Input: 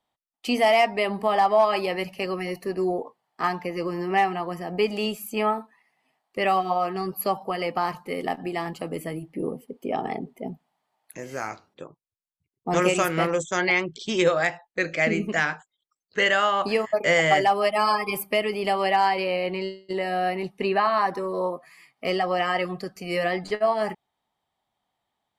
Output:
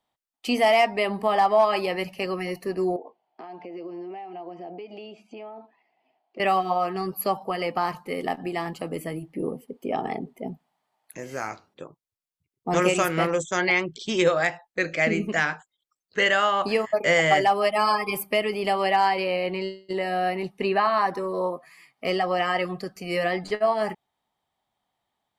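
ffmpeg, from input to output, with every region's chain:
ffmpeg -i in.wav -filter_complex "[0:a]asettb=1/sr,asplit=3[link_01][link_02][link_03];[link_01]atrim=end=2.964[link_04];[link_02]atrim=start=2.96:end=6.4,asetpts=PTS-STARTPTS,afade=type=in:duration=0.004:curve=qsin,afade=type=out:start_time=3.436:duration=0.004:curve=qsin,acompressor=threshold=-37dB:ratio=8:attack=3.2:release=140:knee=1:detection=peak,highpass=230,equalizer=frequency=340:width_type=q:width=4:gain=7,equalizer=frequency=690:width_type=q:width=4:gain=8,equalizer=frequency=1200:width_type=q:width=4:gain=-9,equalizer=frequency=1800:width_type=q:width=4:gain=-9,equalizer=frequency=3800:width_type=q:width=4:gain=-6,lowpass=frequency=4100:width=0.5412,lowpass=frequency=4100:width=1.3066[link_05];[link_03]atrim=start=6.396[link_06];[link_04][link_05]acrossfade=duration=0.004:curve1=hsin:curve2=qsin[link_07];[link_07][link_06]acrossfade=duration=0.004:curve1=qsin:curve2=hsin" out.wav

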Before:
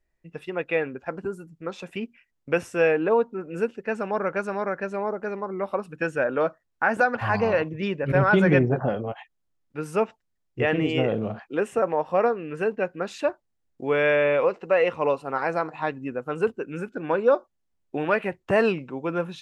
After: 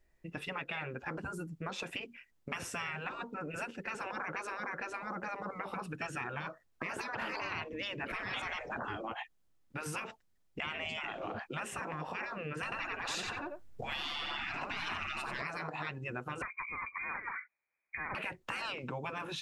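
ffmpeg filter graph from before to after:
ffmpeg -i in.wav -filter_complex "[0:a]asettb=1/sr,asplit=3[link_01][link_02][link_03];[link_01]atrim=end=12.634[link_04];[link_02]atrim=start=12.63:end=15.42,asetpts=PTS-STARTPTS,afade=type=in:duration=0.004:curve=qsin,afade=type=out:start_time=2.786:duration=0.004:curve=qsin,acontrast=66,lowshelf=frequency=180:gain=8,asplit=2[link_05][link_06];[link_06]adelay=90,lowpass=frequency=4600:poles=1,volume=-3dB,asplit=2[link_07][link_08];[link_08]adelay=90,lowpass=frequency=4600:poles=1,volume=0.18,asplit=2[link_09][link_10];[link_10]adelay=90,lowpass=frequency=4600:poles=1,volume=0.18[link_11];[link_05][link_07][link_09][link_11]amix=inputs=4:normalize=0,atrim=end_sample=123039[link_12];[link_03]atrim=start=15.416[link_13];[link_04][link_12]acrossfade=duration=0.004:curve1=hsin:curve2=qsin[link_14];[link_14][link_13]acrossfade=duration=0.004:curve1=qsin:curve2=hsin,asettb=1/sr,asplit=3[link_15][link_16][link_17];[link_15]atrim=end=16.424[link_18];[link_16]atrim=start=16.42:end=18.15,asetpts=PTS-STARTPTS,afade=type=in:duration=0.004:curve=qsin,afade=type=out:start_time=1.726:duration=0.004:curve=qsin,highpass=140,lowpass=frequency=2200:width_type=q:width=0.5098,lowpass=frequency=2200:width_type=q:width=0.6013,lowpass=frequency=2200:width_type=q:width=0.9,lowpass=frequency=2200:width_type=q:width=2.563,afreqshift=-2600[link_19];[link_17]atrim=start=18.146[link_20];[link_18][link_19]acrossfade=duration=0.004:curve1=hsin:curve2=qsin[link_21];[link_21][link_20]acrossfade=duration=0.004:curve1=qsin:curve2=hsin,afftfilt=real='re*lt(hypot(re,im),0.1)':imag='im*lt(hypot(re,im),0.1)':win_size=1024:overlap=0.75,acompressor=threshold=-40dB:ratio=4,volume=4dB" out.wav

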